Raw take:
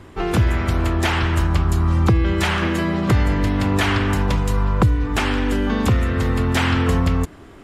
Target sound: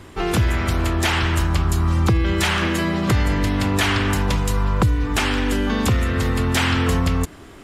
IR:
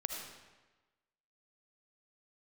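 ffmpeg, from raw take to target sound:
-filter_complex "[0:a]highshelf=frequency=2700:gain=7.5,asplit=2[link_01][link_02];[link_02]alimiter=limit=-14dB:level=0:latency=1,volume=-3dB[link_03];[link_01][link_03]amix=inputs=2:normalize=0,volume=-4.5dB"

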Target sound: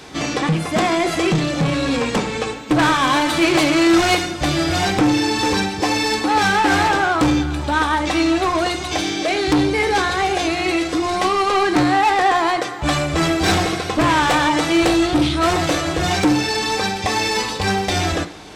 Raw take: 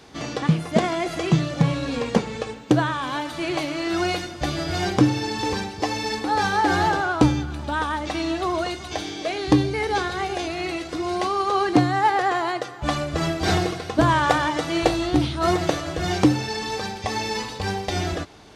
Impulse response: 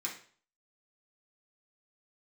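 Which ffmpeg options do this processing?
-filter_complex "[0:a]asettb=1/sr,asplit=3[link_01][link_02][link_03];[link_01]atrim=end=2.794[link_04];[link_02]atrim=start=2.79:end=4.15,asetpts=PTS-STARTPTS,afade=type=in:duration=0.004:curve=qsin,afade=type=out:start_time=1.356:duration=0.004:curve=qsin,acontrast=32[link_05];[link_03]atrim=start=4.146[link_06];[link_04][link_05]acrossfade=duration=0.004:curve1=hsin:curve2=qsin[link_07];[link_07][link_06]acrossfade=duration=0.004:curve1=qsin:curve2=hsin,asoftclip=type=tanh:threshold=-21.5dB,asplit=2[link_08][link_09];[1:a]atrim=start_sample=2205[link_10];[link_09][link_10]afir=irnorm=-1:irlink=0,volume=-7.5dB[link_11];[link_08][link_11]amix=inputs=2:normalize=0,volume=8.5dB"

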